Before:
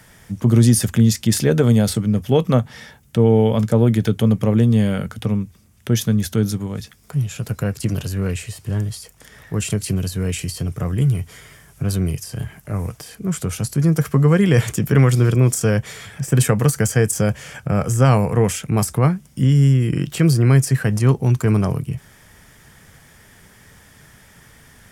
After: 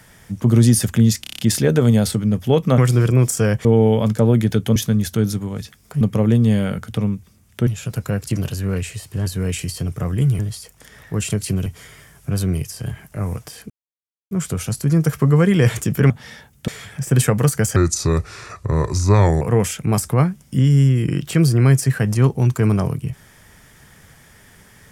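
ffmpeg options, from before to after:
-filter_complex "[0:a]asplit=20[s0][s1][s2][s3][s4][s5][s6][s7][s8][s9][s10][s11][s12][s13][s14][s15][s16][s17][s18][s19];[s0]atrim=end=1.242[s20];[s1]atrim=start=1.208:end=1.242[s21];[s2]atrim=start=1.208:end=1.242[s22];[s3]atrim=start=1.208:end=1.242[s23];[s4]atrim=start=1.208:end=1.242[s24];[s5]atrim=start=1.208:end=1.242[s25];[s6]atrim=start=1.208:end=2.602[s26];[s7]atrim=start=15.018:end=15.892[s27];[s8]atrim=start=3.178:end=4.292[s28];[s9]atrim=start=5.948:end=7.202[s29];[s10]atrim=start=4.288:end=5.952[s30];[s11]atrim=start=7.198:end=8.792[s31];[s12]atrim=start=10.058:end=11.192[s32];[s13]atrim=start=8.788:end=10.062[s33];[s14]atrim=start=11.188:end=13.23,asetpts=PTS-STARTPTS,afade=t=out:st=2.038:d=0.004:c=hsin,apad=pad_dur=0.61[s34];[s15]atrim=start=13.23:end=15.022,asetpts=PTS-STARTPTS,afade=t=in:d=0.004:c=hsin[s35];[s16]atrim=start=2.598:end=3.182[s36];[s17]atrim=start=15.888:end=16.974[s37];[s18]atrim=start=16.97:end=18.26,asetpts=PTS-STARTPTS,asetrate=34398,aresample=44100[s38];[s19]atrim=start=18.256[s39];[s20][s21]acrossfade=d=0.004:c1=hsin:c2=hsin[s40];[s40][s22]acrossfade=d=0.004:c1=hsin:c2=hsin[s41];[s41][s23]acrossfade=d=0.004:c1=hsin:c2=hsin[s42];[s42][s24]acrossfade=d=0.004:c1=hsin:c2=hsin[s43];[s43][s25]acrossfade=d=0.004:c1=hsin:c2=hsin[s44];[s44][s26]acrossfade=d=0.004:c1=hsin:c2=hsin[s45];[s45][s27]acrossfade=d=0.004:c1=hsin:c2=hsin[s46];[s46][s28]acrossfade=d=0.004:c1=hsin:c2=hsin[s47];[s47][s29]acrossfade=d=0.004:c1=hsin:c2=hsin[s48];[s48][s30]acrossfade=d=0.004:c1=hsin:c2=hsin[s49];[s49][s31]acrossfade=d=0.004:c1=hsin:c2=hsin[s50];[s50][s32]acrossfade=d=0.004:c1=hsin:c2=hsin[s51];[s51][s33]acrossfade=d=0.004:c1=hsin:c2=hsin[s52];[s34][s35]concat=n=2:v=0:a=1[s53];[s52][s53]acrossfade=d=0.004:c1=hsin:c2=hsin[s54];[s54][s36]acrossfade=d=0.004:c1=hsin:c2=hsin[s55];[s55][s37]acrossfade=d=0.004:c1=hsin:c2=hsin[s56];[s56][s38]acrossfade=d=0.004:c1=hsin:c2=hsin[s57];[s57][s39]acrossfade=d=0.004:c1=hsin:c2=hsin"

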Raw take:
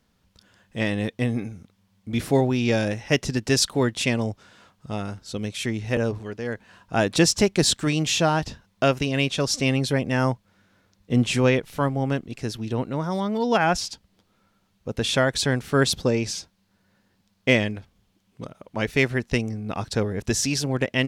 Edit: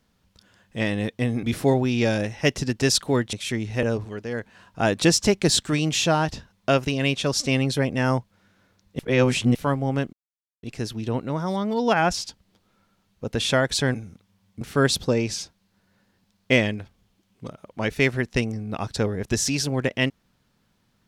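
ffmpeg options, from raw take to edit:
-filter_complex "[0:a]asplit=8[s0][s1][s2][s3][s4][s5][s6][s7];[s0]atrim=end=1.432[s8];[s1]atrim=start=2.098:end=4.002[s9];[s2]atrim=start=5.468:end=11.132[s10];[s3]atrim=start=11.128:end=11.692,asetpts=PTS-STARTPTS,areverse[s11];[s4]atrim=start=11.688:end=12.27,asetpts=PTS-STARTPTS,afade=t=out:st=0.578:d=0.004:c=hsin,apad=pad_dur=0.5[s12];[s5]atrim=start=12.27:end=15.582,asetpts=PTS-STARTPTS,afade=t=in:d=0.004:c=hsin[s13];[s6]atrim=start=1.428:end=2.102[s14];[s7]atrim=start=15.578[s15];[s8][s9]acrossfade=d=0.004:c1=hsin:c2=hsin[s16];[s16][s10]acrossfade=d=0.004:c1=hsin:c2=hsin[s17];[s17][s11]acrossfade=d=0.004:c1=hsin:c2=hsin[s18];[s12][s13]concat=n=2:v=0:a=1[s19];[s18][s19]acrossfade=d=0.004:c1=hsin:c2=hsin[s20];[s20][s14]acrossfade=d=0.004:c1=hsin:c2=hsin[s21];[s21][s15]acrossfade=d=0.004:c1=hsin:c2=hsin"

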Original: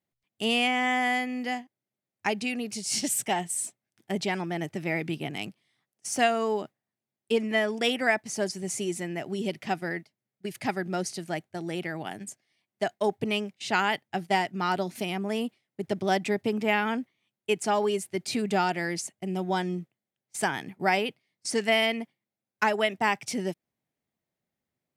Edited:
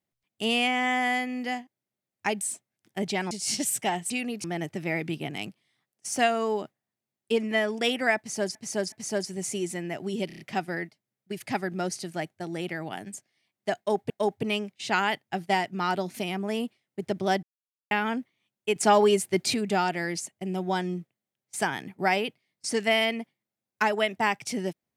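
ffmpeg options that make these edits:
-filter_complex "[0:a]asplit=16[s0][s1][s2][s3][s4][s5][s6][s7][s8][s9][s10][s11][s12][s13][s14][s15];[s0]atrim=end=2.412[s16];[s1]atrim=start=3.538:end=4.442[s17];[s2]atrim=start=2.748:end=3.542[s18];[s3]atrim=start=2.408:end=2.752[s19];[s4]atrim=start=4.438:end=8.552[s20];[s5]atrim=start=8.178:end=8.552[s21];[s6]atrim=start=8.178:end=9.562[s22];[s7]atrim=start=9.528:end=9.562[s23];[s8]atrim=start=9.528:end=9.562[s24];[s9]atrim=start=9.528:end=9.562[s25];[s10]atrim=start=9.528:end=13.242[s26];[s11]atrim=start=12.908:end=16.24,asetpts=PTS-STARTPTS,afade=t=out:st=3.328:d=0.004:c=hsin[s27];[s12]atrim=start=16.24:end=16.72,asetpts=PTS-STARTPTS,volume=0[s28];[s13]atrim=start=16.72:end=17.572,asetpts=PTS-STARTPTS,afade=t=in:d=0.004:c=hsin[s29];[s14]atrim=start=17.568:end=18.352,asetpts=PTS-STARTPTS,volume=2[s30];[s15]atrim=start=18.348[s31];[s16][s17]acrossfade=d=0.004:c1=hsin:c2=hsin[s32];[s32][s18]acrossfade=d=0.004:c1=hsin:c2=hsin[s33];[s33][s19]acrossfade=d=0.004:c1=hsin:c2=hsin[s34];[s34][s20]acrossfade=d=0.004:c1=hsin:c2=hsin[s35];[s35][s21]acrossfade=d=0.004:c1=hsin:c2=hsin[s36];[s36][s22]acrossfade=d=0.004:c1=hsin:c2=hsin[s37];[s37][s23]acrossfade=d=0.004:c1=hsin:c2=hsin[s38];[s38][s24]acrossfade=d=0.004:c1=hsin:c2=hsin[s39];[s39][s25]acrossfade=d=0.004:c1=hsin:c2=hsin[s40];[s40][s26]acrossfade=d=0.004:c1=hsin:c2=hsin[s41];[s27][s28][s29]concat=n=3:v=0:a=1[s42];[s41][s42]acrossfade=d=0.004:c1=hsin:c2=hsin[s43];[s43][s30]acrossfade=d=0.004:c1=hsin:c2=hsin[s44];[s44][s31]acrossfade=d=0.004:c1=hsin:c2=hsin"

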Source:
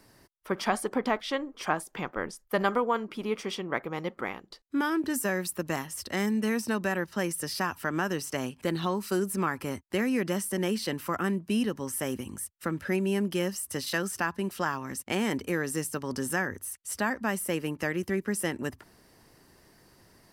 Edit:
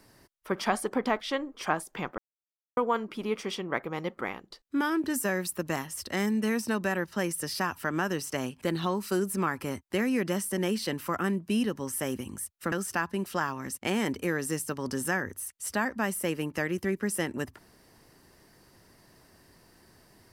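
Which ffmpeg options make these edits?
-filter_complex "[0:a]asplit=4[s0][s1][s2][s3];[s0]atrim=end=2.18,asetpts=PTS-STARTPTS,afade=t=out:st=2.176:d=0.004:c=hsin[s4];[s1]atrim=start=2.18:end=2.77,asetpts=PTS-STARTPTS,volume=0[s5];[s2]atrim=start=2.77:end=12.722,asetpts=PTS-STARTPTS,afade=t=in:d=0.004:c=hsin[s6];[s3]atrim=start=13.968[s7];[s4][s5][s6]concat=n=3:v=0:a=1[s8];[s8][s7]acrossfade=d=0.004:c1=hsin:c2=hsin"

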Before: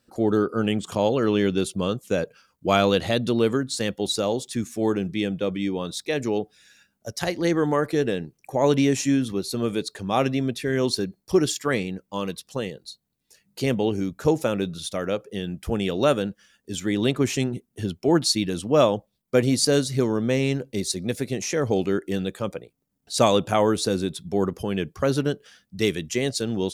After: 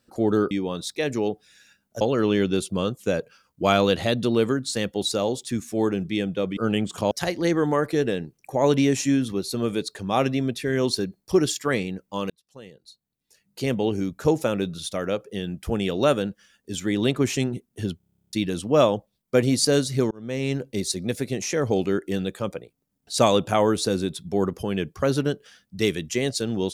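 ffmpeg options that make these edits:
-filter_complex "[0:a]asplit=19[s0][s1][s2][s3][s4][s5][s6][s7][s8][s9][s10][s11][s12][s13][s14][s15][s16][s17][s18];[s0]atrim=end=0.512[s19];[s1]atrim=start=5.608:end=7.112[s20];[s2]atrim=start=1.048:end=5.612[s21];[s3]atrim=start=0.508:end=1.052[s22];[s4]atrim=start=7.108:end=12.3,asetpts=PTS-STARTPTS,afade=t=out:st=5.188:d=0.004:c=hsin[s23];[s5]atrim=start=12.3:end=18.002,asetpts=PTS-STARTPTS,afade=t=in:d=1.65[s24];[s6]atrim=start=17.968:end=18.002[s25];[s7]atrim=start=17.968:end=18.002[s26];[s8]atrim=start=17.968:end=18.002[s27];[s9]atrim=start=17.968:end=18.002[s28];[s10]atrim=start=17.968:end=18.002[s29];[s11]atrim=start=17.968:end=18.002[s30];[s12]atrim=start=17.968:end=18.002[s31];[s13]atrim=start=17.968:end=18.002[s32];[s14]atrim=start=17.968:end=18.002[s33];[s15]atrim=start=17.968:end=18.002[s34];[s16]atrim=start=17.968:end=18.002[s35];[s17]atrim=start=18.328:end=20.11,asetpts=PTS-STARTPTS,afade=t=out:st=1.778:d=0.004:c=hsin[s36];[s18]atrim=start=20.11,asetpts=PTS-STARTPTS,afade=t=in:d=0.48[s37];[s19][s20]acrossfade=d=0.004:c1=hsin:c2=hsin[s38];[s38][s21]acrossfade=d=0.004:c1=hsin:c2=hsin[s39];[s39][s22]acrossfade=d=0.004:c1=hsin:c2=hsin[s40];[s23][s24]concat=n=2:v=0:a=1[s41];[s40][s41]acrossfade=d=0.004:c1=hsin:c2=hsin[s42];[s42][s25]acrossfade=d=0.004:c1=hsin:c2=hsin[s43];[s43][s26]acrossfade=d=0.004:c1=hsin:c2=hsin[s44];[s44][s27]acrossfade=d=0.004:c1=hsin:c2=hsin[s45];[s45][s28]acrossfade=d=0.004:c1=hsin:c2=hsin[s46];[s46][s29]acrossfade=d=0.004:c1=hsin:c2=hsin[s47];[s47][s30]acrossfade=d=0.004:c1=hsin:c2=hsin[s48];[s48][s31]acrossfade=d=0.004:c1=hsin:c2=hsin[s49];[s49][s32]acrossfade=d=0.004:c1=hsin:c2=hsin[s50];[s50][s33]acrossfade=d=0.004:c1=hsin:c2=hsin[s51];[s51][s34]acrossfade=d=0.004:c1=hsin:c2=hsin[s52];[s52][s35]acrossfade=d=0.004:c1=hsin:c2=hsin[s53];[s36][s37]concat=n=2:v=0:a=1[s54];[s53][s54]acrossfade=d=0.004:c1=hsin:c2=hsin"

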